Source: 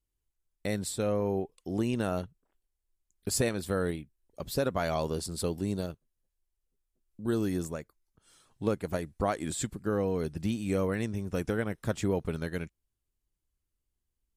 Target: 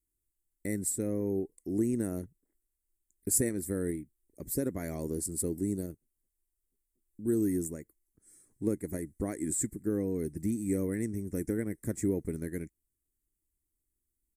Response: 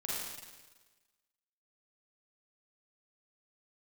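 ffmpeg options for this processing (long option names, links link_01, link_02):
-af "firequalizer=gain_entry='entry(170,0);entry(310,8);entry(500,-4);entry(750,-12);entry(1300,-14);entry(2000,1);entry(2900,-24);entry(5300,-5);entry(8100,10)':delay=0.05:min_phase=1,volume=-3.5dB"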